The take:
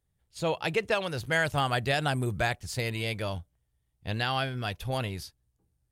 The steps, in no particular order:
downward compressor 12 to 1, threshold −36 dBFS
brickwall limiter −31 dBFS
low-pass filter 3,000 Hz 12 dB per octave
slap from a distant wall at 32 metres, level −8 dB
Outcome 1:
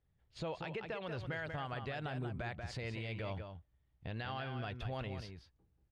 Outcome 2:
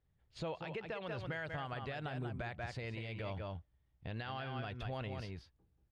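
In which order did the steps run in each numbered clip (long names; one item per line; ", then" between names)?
low-pass filter, then downward compressor, then slap from a distant wall, then brickwall limiter
slap from a distant wall, then downward compressor, then brickwall limiter, then low-pass filter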